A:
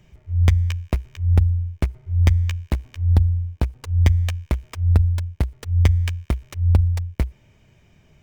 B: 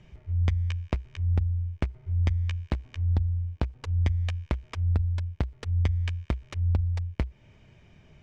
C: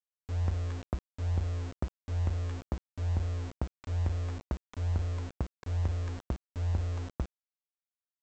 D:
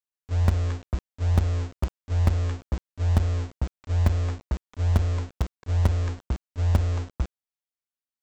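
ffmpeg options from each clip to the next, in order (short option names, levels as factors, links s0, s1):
-af "lowpass=5000,acompressor=threshold=0.0355:ratio=2"
-af "lowpass=f=1400:w=0.5412,lowpass=f=1400:w=1.3066,aresample=16000,aeval=exprs='val(0)*gte(abs(val(0)),0.0282)':c=same,aresample=44100,volume=0.531"
-filter_complex "[0:a]agate=range=0.316:threshold=0.0178:ratio=16:detection=peak,asplit=2[s0][s1];[s1]acrusher=bits=3:mix=0:aa=0.000001,volume=0.316[s2];[s0][s2]amix=inputs=2:normalize=0,volume=2.51"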